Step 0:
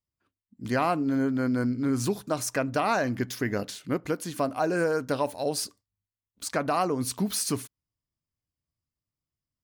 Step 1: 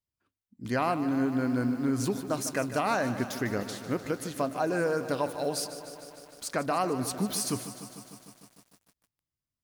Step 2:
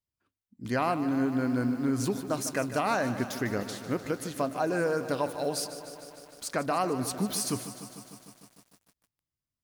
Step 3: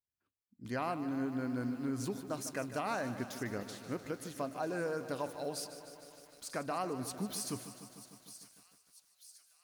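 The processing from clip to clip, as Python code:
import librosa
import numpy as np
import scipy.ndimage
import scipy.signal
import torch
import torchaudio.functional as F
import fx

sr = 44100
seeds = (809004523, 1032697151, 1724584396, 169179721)

y1 = fx.echo_crushed(x, sr, ms=151, feedback_pct=80, bits=8, wet_db=-12.5)
y1 = y1 * 10.0 ** (-2.5 / 20.0)
y2 = y1
y3 = fx.echo_wet_highpass(y2, sr, ms=941, feedback_pct=61, hz=3400.0, wet_db=-12.5)
y3 = y3 * 10.0 ** (-8.5 / 20.0)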